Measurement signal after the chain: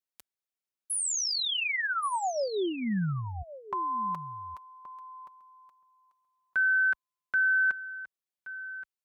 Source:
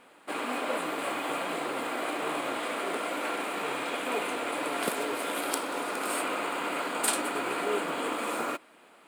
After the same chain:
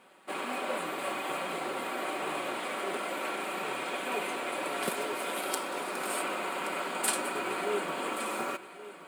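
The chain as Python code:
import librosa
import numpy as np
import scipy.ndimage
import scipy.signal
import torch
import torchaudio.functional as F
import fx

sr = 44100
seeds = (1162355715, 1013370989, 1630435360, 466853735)

y = scipy.signal.sosfilt(scipy.signal.butter(2, 44.0, 'highpass', fs=sr, output='sos'), x)
y = y + 0.49 * np.pad(y, (int(5.3 * sr / 1000.0), 0))[:len(y)]
y = y + 10.0 ** (-15.0 / 20.0) * np.pad(y, (int(1125 * sr / 1000.0), 0))[:len(y)]
y = y * librosa.db_to_amplitude(-3.0)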